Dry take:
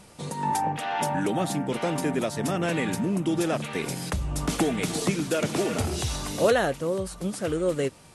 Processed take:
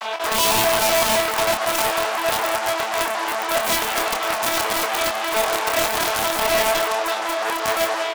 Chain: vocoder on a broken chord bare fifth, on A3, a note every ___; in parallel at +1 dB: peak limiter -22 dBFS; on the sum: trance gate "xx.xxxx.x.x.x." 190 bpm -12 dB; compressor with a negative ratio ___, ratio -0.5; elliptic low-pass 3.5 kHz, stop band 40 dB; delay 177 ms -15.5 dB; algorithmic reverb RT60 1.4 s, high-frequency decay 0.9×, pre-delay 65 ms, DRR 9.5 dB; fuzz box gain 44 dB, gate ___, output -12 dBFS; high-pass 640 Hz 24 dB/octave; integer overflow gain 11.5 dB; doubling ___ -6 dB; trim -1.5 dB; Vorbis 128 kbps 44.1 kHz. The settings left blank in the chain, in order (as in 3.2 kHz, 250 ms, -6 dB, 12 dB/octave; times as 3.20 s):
127 ms, -27 dBFS, -51 dBFS, 27 ms